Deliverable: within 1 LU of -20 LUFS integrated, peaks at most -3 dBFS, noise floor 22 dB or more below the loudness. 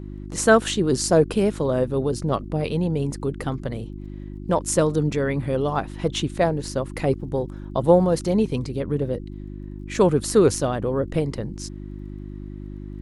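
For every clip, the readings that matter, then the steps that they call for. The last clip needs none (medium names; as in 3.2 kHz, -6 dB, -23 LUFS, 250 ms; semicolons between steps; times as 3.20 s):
tick rate 19 per s; hum 50 Hz; highest harmonic 350 Hz; hum level -32 dBFS; loudness -22.5 LUFS; peak level -2.0 dBFS; loudness target -20.0 LUFS
-> de-click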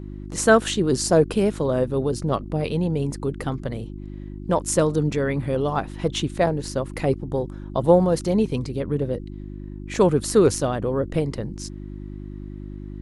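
tick rate 0 per s; hum 50 Hz; highest harmonic 350 Hz; hum level -32 dBFS
-> de-hum 50 Hz, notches 7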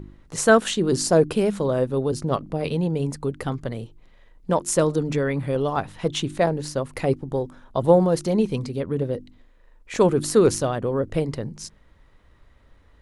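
hum not found; loudness -23.0 LUFS; peak level -2.5 dBFS; loudness target -20.0 LUFS
-> trim +3 dB; peak limiter -3 dBFS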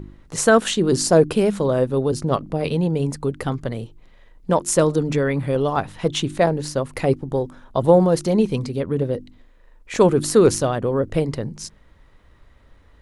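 loudness -20.5 LUFS; peak level -3.0 dBFS; noise floor -52 dBFS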